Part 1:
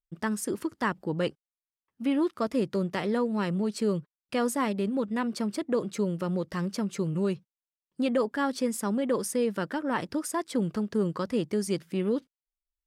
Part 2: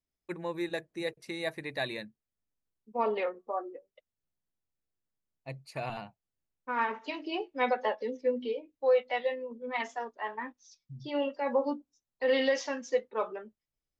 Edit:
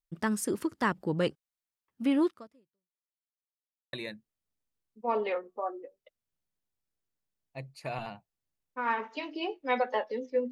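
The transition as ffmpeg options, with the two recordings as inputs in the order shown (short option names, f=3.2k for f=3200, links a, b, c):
-filter_complex "[0:a]apad=whole_dur=10.51,atrim=end=10.51,asplit=2[a][b];[a]atrim=end=3.12,asetpts=PTS-STARTPTS,afade=t=out:st=2.26:d=0.86:c=exp[c];[b]atrim=start=3.12:end=3.93,asetpts=PTS-STARTPTS,volume=0[d];[1:a]atrim=start=1.84:end=8.42,asetpts=PTS-STARTPTS,afade=t=in:d=0.004:c=hsin[e];[c][d][e]concat=n=3:v=0:a=1"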